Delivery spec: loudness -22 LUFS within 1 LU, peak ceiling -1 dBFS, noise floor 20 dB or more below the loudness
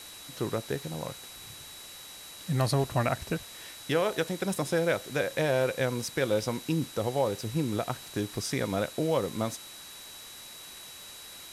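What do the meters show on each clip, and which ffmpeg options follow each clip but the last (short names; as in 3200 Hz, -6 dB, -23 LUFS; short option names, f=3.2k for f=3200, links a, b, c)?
steady tone 3900 Hz; tone level -48 dBFS; noise floor -46 dBFS; noise floor target -51 dBFS; loudness -30.5 LUFS; peak -13.5 dBFS; loudness target -22.0 LUFS
-> -af "bandreject=f=3.9k:w=30"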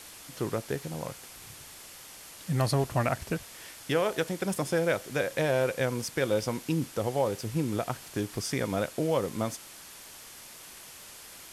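steady tone none; noise floor -48 dBFS; noise floor target -51 dBFS
-> -af "afftdn=nr=6:nf=-48"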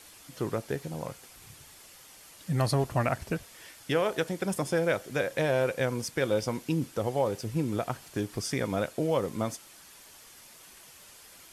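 noise floor -53 dBFS; loudness -30.5 LUFS; peak -14.0 dBFS; loudness target -22.0 LUFS
-> -af "volume=8.5dB"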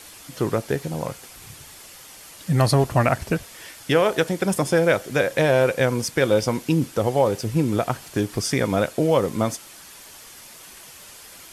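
loudness -22.0 LUFS; peak -5.5 dBFS; noise floor -44 dBFS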